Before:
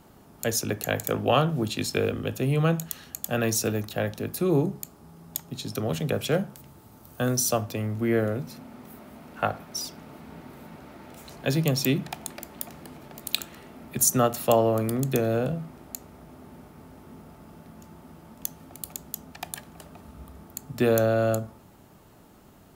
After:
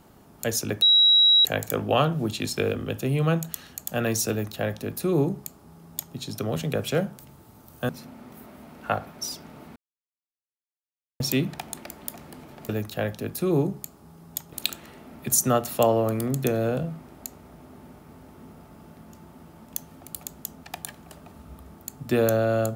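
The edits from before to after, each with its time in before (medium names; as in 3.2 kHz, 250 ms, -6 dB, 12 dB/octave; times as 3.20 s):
0.82 s: add tone 3.87 kHz -13.5 dBFS 0.63 s
3.68–5.52 s: copy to 13.22 s
7.26–8.42 s: delete
10.29–11.73 s: mute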